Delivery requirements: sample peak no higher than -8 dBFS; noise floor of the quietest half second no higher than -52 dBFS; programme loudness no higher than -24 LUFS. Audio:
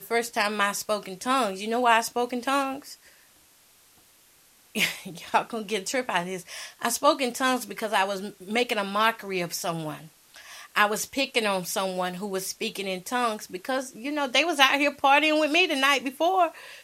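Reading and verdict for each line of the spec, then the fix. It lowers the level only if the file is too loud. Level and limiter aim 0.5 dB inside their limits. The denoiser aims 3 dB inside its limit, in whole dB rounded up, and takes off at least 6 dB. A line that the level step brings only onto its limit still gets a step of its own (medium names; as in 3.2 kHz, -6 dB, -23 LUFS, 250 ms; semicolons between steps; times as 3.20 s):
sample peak -4.5 dBFS: fail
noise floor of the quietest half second -58 dBFS: pass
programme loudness -25.5 LUFS: pass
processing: peak limiter -8.5 dBFS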